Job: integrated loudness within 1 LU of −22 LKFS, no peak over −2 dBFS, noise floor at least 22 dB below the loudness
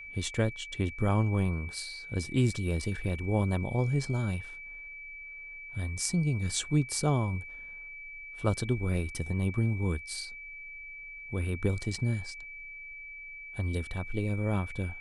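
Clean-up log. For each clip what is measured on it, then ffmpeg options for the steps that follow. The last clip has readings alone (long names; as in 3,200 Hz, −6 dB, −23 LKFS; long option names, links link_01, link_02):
interfering tone 2,300 Hz; level of the tone −42 dBFS; integrated loudness −32.5 LKFS; sample peak −13.0 dBFS; target loudness −22.0 LKFS
→ -af "bandreject=frequency=2300:width=30"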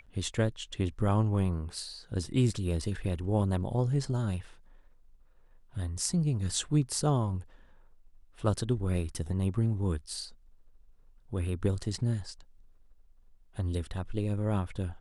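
interfering tone none found; integrated loudness −31.5 LKFS; sample peak −13.0 dBFS; target loudness −22.0 LKFS
→ -af "volume=9.5dB"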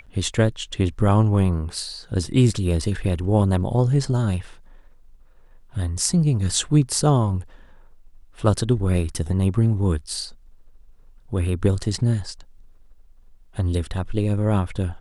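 integrated loudness −22.0 LKFS; sample peak −3.5 dBFS; background noise floor −50 dBFS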